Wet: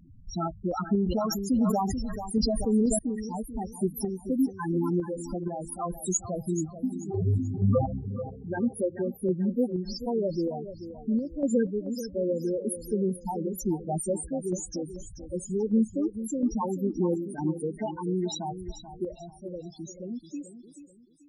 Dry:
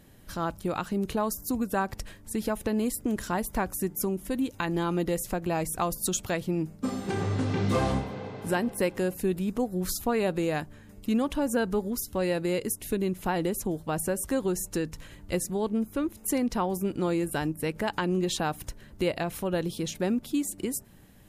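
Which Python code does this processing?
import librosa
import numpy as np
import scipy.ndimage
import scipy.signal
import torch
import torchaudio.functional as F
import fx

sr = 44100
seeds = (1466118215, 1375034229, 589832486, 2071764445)

y = fx.fade_out_tail(x, sr, length_s=6.21)
y = fx.peak_eq(y, sr, hz=5500.0, db=11.0, octaves=1.3)
y = fx.rider(y, sr, range_db=3, speed_s=2.0)
y = fx.spec_topn(y, sr, count=4)
y = fx.tremolo_random(y, sr, seeds[0], hz=4.2, depth_pct=65)
y = fx.echo_feedback(y, sr, ms=435, feedback_pct=33, wet_db=-12.0)
y = fx.sustainer(y, sr, db_per_s=24.0, at=(0.99, 2.99))
y = y * 10.0 ** (5.5 / 20.0)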